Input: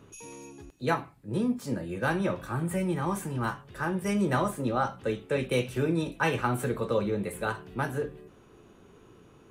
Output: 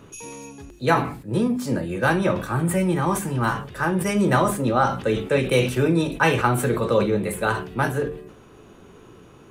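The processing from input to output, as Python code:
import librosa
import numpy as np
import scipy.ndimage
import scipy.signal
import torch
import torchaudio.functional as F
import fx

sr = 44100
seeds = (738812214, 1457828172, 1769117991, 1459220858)

y = fx.hum_notches(x, sr, base_hz=50, count=9)
y = fx.sustainer(y, sr, db_per_s=94.0)
y = y * librosa.db_to_amplitude(8.0)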